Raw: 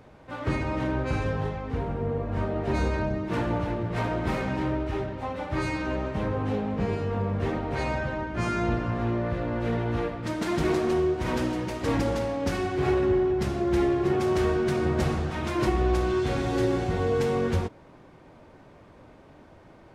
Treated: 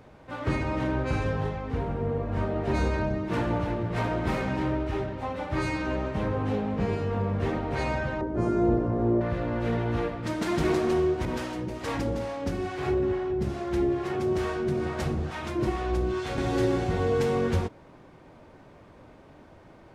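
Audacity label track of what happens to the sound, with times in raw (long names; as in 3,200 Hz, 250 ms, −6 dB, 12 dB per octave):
8.210000	9.210000	drawn EQ curve 190 Hz 0 dB, 400 Hz +8 dB, 2,700 Hz −17 dB, 8,000 Hz −10 dB
11.250000	16.380000	two-band tremolo in antiphase 2.3 Hz, crossover 570 Hz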